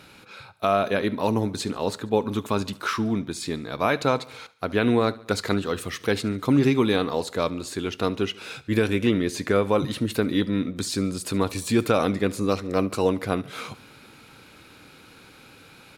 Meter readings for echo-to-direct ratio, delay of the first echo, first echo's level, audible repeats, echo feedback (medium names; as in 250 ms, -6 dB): -19.5 dB, 71 ms, -21.0 dB, 3, 55%